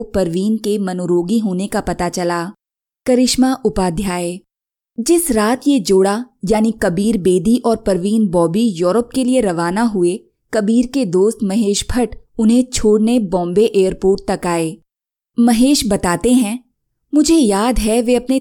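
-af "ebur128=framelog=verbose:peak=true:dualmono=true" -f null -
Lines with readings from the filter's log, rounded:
Integrated loudness:
  I:         -12.5 LUFS
  Threshold: -22.8 LUFS
Loudness range:
  LRA:         2.5 LU
  Threshold: -32.8 LUFS
  LRA low:   -14.4 LUFS
  LRA high:  -11.9 LUFS
True peak:
  Peak:       -2.6 dBFS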